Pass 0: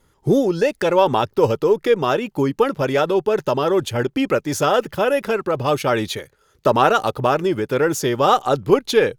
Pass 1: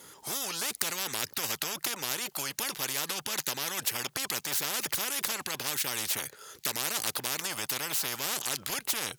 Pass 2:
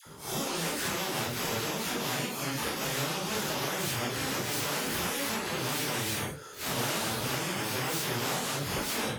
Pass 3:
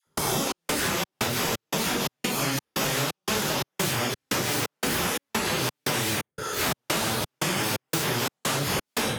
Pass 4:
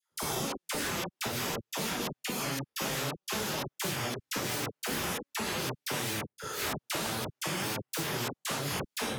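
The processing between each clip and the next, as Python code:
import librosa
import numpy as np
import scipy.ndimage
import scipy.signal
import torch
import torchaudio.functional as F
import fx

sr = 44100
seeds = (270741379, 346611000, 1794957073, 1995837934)

y1 = scipy.signal.sosfilt(scipy.signal.bessel(2, 240.0, 'highpass', norm='mag', fs=sr, output='sos'), x)
y1 = fx.high_shelf(y1, sr, hz=3100.0, db=11.0)
y1 = fx.spectral_comp(y1, sr, ratio=10.0)
y1 = y1 * 10.0 ** (-6.0 / 20.0)
y2 = fx.phase_scramble(y1, sr, seeds[0], window_ms=200)
y2 = fx.tilt_eq(y2, sr, slope=-2.5)
y2 = fx.dispersion(y2, sr, late='lows', ms=64.0, hz=840.0)
y2 = y2 * 10.0 ** (4.5 / 20.0)
y3 = fx.step_gate(y2, sr, bpm=87, pattern='.xx.xx.xx', floor_db=-60.0, edge_ms=4.5)
y3 = fx.band_squash(y3, sr, depth_pct=100)
y3 = y3 * 10.0 ** (5.5 / 20.0)
y4 = fx.dispersion(y3, sr, late='lows', ms=52.0, hz=940.0)
y4 = y4 * 10.0 ** (-7.0 / 20.0)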